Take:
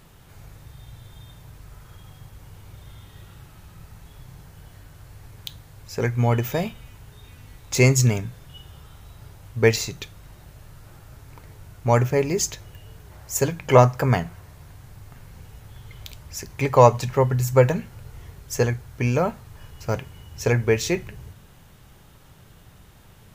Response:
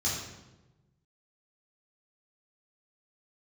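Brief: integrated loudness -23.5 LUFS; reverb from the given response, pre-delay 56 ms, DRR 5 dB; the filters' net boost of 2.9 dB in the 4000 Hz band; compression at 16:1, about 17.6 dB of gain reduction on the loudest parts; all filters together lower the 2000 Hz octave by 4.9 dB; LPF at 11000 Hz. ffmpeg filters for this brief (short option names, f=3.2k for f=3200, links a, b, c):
-filter_complex "[0:a]lowpass=11k,equalizer=f=2k:t=o:g=-7.5,equalizer=f=4k:t=o:g=5.5,acompressor=threshold=-26dB:ratio=16,asplit=2[a][b];[1:a]atrim=start_sample=2205,adelay=56[c];[b][c]afir=irnorm=-1:irlink=0,volume=-12dB[d];[a][d]amix=inputs=2:normalize=0,volume=7.5dB"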